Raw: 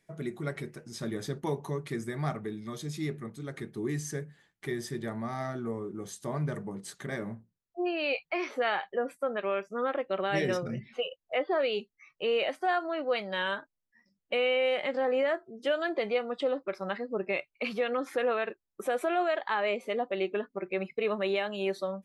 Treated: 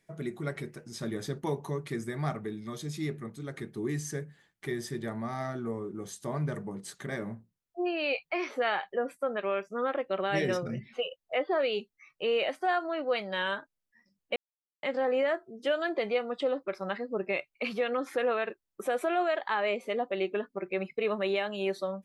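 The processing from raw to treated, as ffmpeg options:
-filter_complex "[0:a]asplit=3[a][b][c];[a]atrim=end=14.36,asetpts=PTS-STARTPTS,afade=t=out:st=14.356:d=0.004:c=hsin[d];[b]atrim=start=14.36:end=14.83,asetpts=PTS-STARTPTS,volume=0[e];[c]atrim=start=14.83,asetpts=PTS-STARTPTS,afade=t=in:d=0.004:c=hsin[f];[d][e][f]concat=n=3:v=0:a=1"

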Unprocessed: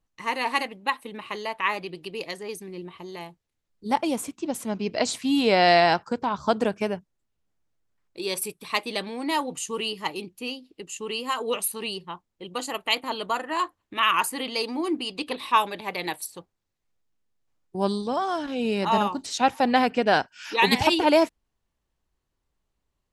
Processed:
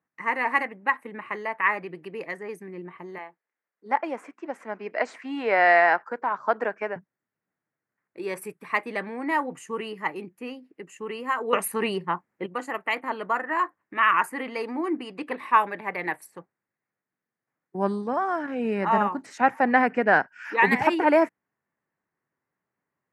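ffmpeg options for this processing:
-filter_complex "[0:a]asettb=1/sr,asplit=3[a][b][c];[a]atrim=end=3.184[d];[b]atrim=start=3.18:end=6.96,asetpts=PTS-STARTPTS,afade=t=in:d=0.004:c=qsin,afade=t=out:st=3.776:d=0.004:c=qsin,highpass=450,lowpass=5.2k[e];[c]atrim=start=6.956[f];[d][e]acrossfade=d=0.004:c1=hsin:c2=qsin[g];[g][f]acrossfade=d=0.004:c1=qsin:c2=hsin,asplit=3[h][i][j];[h]atrim=end=11.532[k];[i]atrim=start=11.528:end=12.462,asetpts=PTS-STARTPTS,volume=9dB[l];[j]atrim=start=12.458[m];[k][l]acrossfade=d=0.004:c1=hsin:c2=hsin[n];[n][m]acrossfade=d=0.004:c1=hsin:c2=hsin,highpass=f=130:w=0.5412,highpass=f=130:w=1.3066,highshelf=f=2.6k:t=q:w=3:g=-11.5,volume=-1dB"

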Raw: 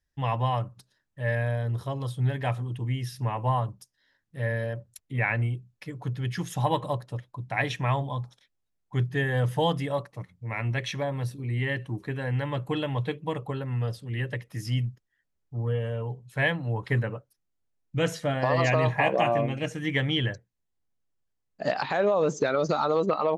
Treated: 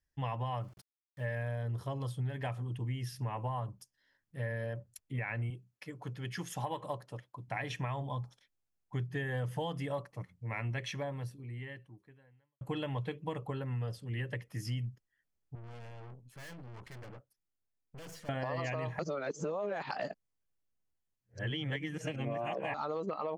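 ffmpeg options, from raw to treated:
-filter_complex "[0:a]asettb=1/sr,asplit=3[a][b][c];[a]atrim=end=0.614[d];[b]atrim=start=0.61:end=1.63,asetpts=PTS-STARTPTS,afade=t=in:d=0.004:c=qsin,afade=t=out:st=1.016:d=0.004:c=qsin,aeval=exprs='val(0)*gte(abs(val(0)),0.00237)':c=same[e];[c]atrim=start=1.626[f];[d][e]acrossfade=d=0.004:c1=hsin:c2=qsin[g];[g][f]acrossfade=d=0.004:c1=qsin:c2=hsin,asettb=1/sr,asplit=3[h][i][j];[h]atrim=end=5.504[k];[i]atrim=start=5.5:end=7.48,asetpts=PTS-STARTPTS,afade=t=in:d=0.004:c=qsin,afade=t=out:st=1.976:d=0.004:c=qsin,highpass=f=250:p=1[l];[j]atrim=start=7.476[m];[k][l]acrossfade=d=0.004:c1=hsin:c2=qsin[n];[n][m]acrossfade=d=0.004:c1=qsin:c2=hsin,asettb=1/sr,asplit=3[o][p][q];[o]atrim=end=15.554[r];[p]atrim=start=15.55:end=18.29,asetpts=PTS-STARTPTS,afade=t=in:d=0.004:c=qsin,afade=t=out:st=2.736:d=0.004:c=qsin,aeval=exprs='(tanh(141*val(0)+0.65)-tanh(0.65))/141':c=same[s];[q]atrim=start=18.286[t];[r][s]acrossfade=d=0.004:c1=hsin:c2=qsin[u];[u][t]acrossfade=d=0.004:c1=qsin:c2=hsin,asplit=4[v][w][x][y];[v]atrim=end=12.61,asetpts=PTS-STARTPTS,afade=t=out:st=10.76:d=1.85:c=qua[z];[w]atrim=start=12.61:end=18.992,asetpts=PTS-STARTPTS,afade=t=in:d=0.004:c=hsin[aa];[x]atrim=start=18.988:end=22.742,asetpts=PTS-STARTPTS,areverse[ab];[y]atrim=start=22.738[ac];[z][aa]concat=n=2:v=0:a=1[ad];[ad][ab]acrossfade=d=0.004:c1=hsin:c2=hsin[ae];[ae][ac]acrossfade=d=0.004:c1=hsin:c2=hsin,alimiter=limit=-17dB:level=0:latency=1:release=201,bandreject=f=3.8k:w=9.9,acompressor=threshold=-28dB:ratio=6,volume=-4.5dB"

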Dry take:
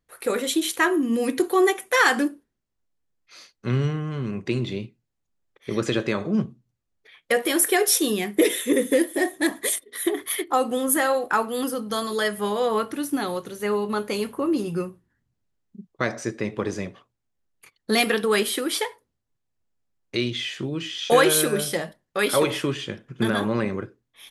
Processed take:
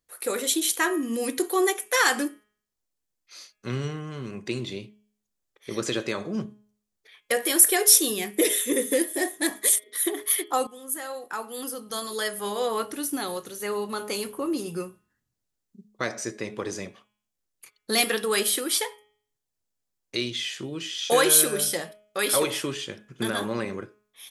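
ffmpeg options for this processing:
-filter_complex "[0:a]asplit=2[a][b];[a]atrim=end=10.67,asetpts=PTS-STARTPTS,afade=t=out:st=10.666:d=0.004:c=hsin:silence=0.11885[c];[b]atrim=start=10.67,asetpts=PTS-STARTPTS,afade=t=in:d=1.94:silence=0.11885[d];[c][d]concat=n=2:v=0:a=1,bass=f=250:g=-5,treble=f=4k:g=9,bandreject=f=209.9:t=h:w=4,bandreject=f=419.8:t=h:w=4,bandreject=f=629.7:t=h:w=4,bandreject=f=839.6:t=h:w=4,bandreject=f=1.0495k:t=h:w=4,bandreject=f=1.2594k:t=h:w=4,bandreject=f=1.4693k:t=h:w=4,bandreject=f=1.6792k:t=h:w=4,bandreject=f=1.8891k:t=h:w=4,bandreject=f=2.099k:t=h:w=4,bandreject=f=2.3089k:t=h:w=4,bandreject=f=2.5188k:t=h:w=4,bandreject=f=2.7287k:t=h:w=4,bandreject=f=2.9386k:t=h:w=4,bandreject=f=3.1485k:t=h:w=4,bandreject=f=3.3584k:t=h:w=4,volume=-3.5dB"

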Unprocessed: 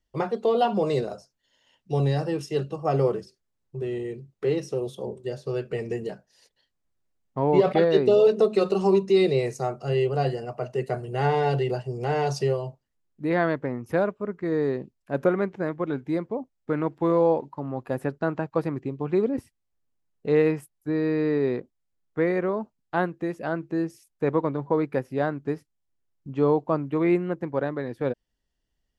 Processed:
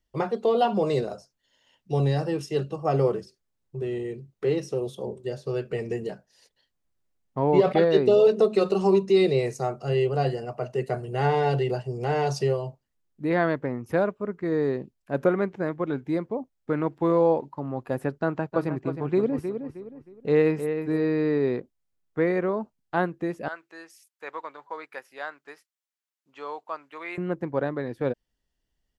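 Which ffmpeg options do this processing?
-filter_complex "[0:a]asplit=3[a][b][c];[a]afade=t=out:st=18.52:d=0.02[d];[b]asplit=2[e][f];[f]adelay=313,lowpass=f=3.9k:p=1,volume=-8dB,asplit=2[g][h];[h]adelay=313,lowpass=f=3.9k:p=1,volume=0.34,asplit=2[i][j];[j]adelay=313,lowpass=f=3.9k:p=1,volume=0.34,asplit=2[k][l];[l]adelay=313,lowpass=f=3.9k:p=1,volume=0.34[m];[e][g][i][k][m]amix=inputs=5:normalize=0,afade=t=in:st=18.52:d=0.02,afade=t=out:st=21.05:d=0.02[n];[c]afade=t=in:st=21.05:d=0.02[o];[d][n][o]amix=inputs=3:normalize=0,asettb=1/sr,asplit=3[p][q][r];[p]atrim=end=23.484[s];[q]atrim=start=23.48:end=27.18,asetpts=PTS-STARTPTS,afade=t=in:d=0.004:c=qsin,afade=t=out:st=3.696:d=0.004:c=qsin,highpass=1.2k[t];[r]atrim=start=27.176[u];[s][t]acrossfade=d=0.004:c1=hsin:c2=qsin[v];[v][u]acrossfade=d=0.004:c1=qsin:c2=hsin"

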